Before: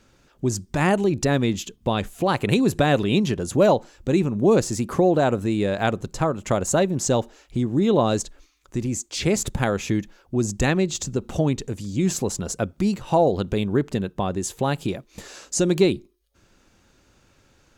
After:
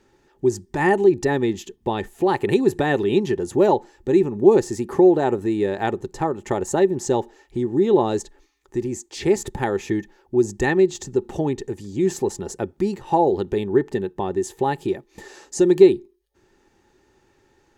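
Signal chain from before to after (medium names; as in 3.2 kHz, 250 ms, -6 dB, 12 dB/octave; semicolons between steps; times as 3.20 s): small resonant body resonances 380/840/1800 Hz, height 15 dB, ringing for 40 ms; trim -6 dB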